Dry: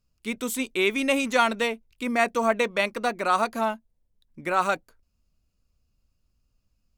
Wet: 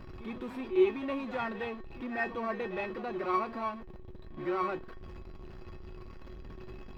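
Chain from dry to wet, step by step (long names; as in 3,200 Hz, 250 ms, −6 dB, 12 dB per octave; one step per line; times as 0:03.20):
converter with a step at zero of −25.5 dBFS
tuned comb filter 370 Hz, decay 0.18 s, harmonics odd, mix 90%
in parallel at −6 dB: decimation without filtering 13×
on the sum: high-frequency loss of the air 360 metres
backwards echo 62 ms −11.5 dB
level +1 dB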